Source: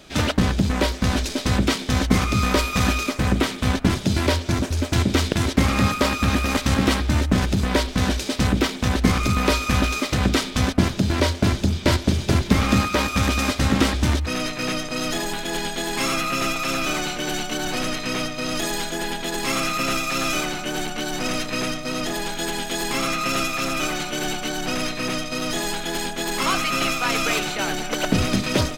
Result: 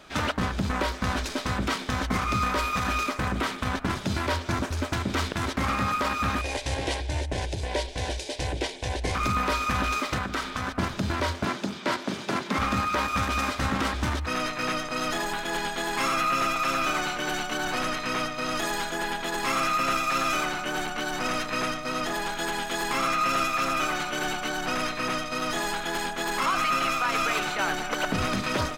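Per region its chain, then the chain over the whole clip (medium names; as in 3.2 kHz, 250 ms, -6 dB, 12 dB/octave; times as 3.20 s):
6.41–9.15 s: steep low-pass 11 kHz 48 dB/octave + static phaser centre 520 Hz, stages 4
10.18–10.79 s: peaking EQ 1.4 kHz +4 dB 0.87 oct + compression 2:1, threshold -27 dBFS + de-hum 63.93 Hz, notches 2
11.45–12.58 s: high-pass 170 Hz 24 dB/octave + treble shelf 11 kHz -7 dB
whole clip: peaking EQ 1.2 kHz +10 dB 1.7 oct; peak limiter -9 dBFS; trim -7 dB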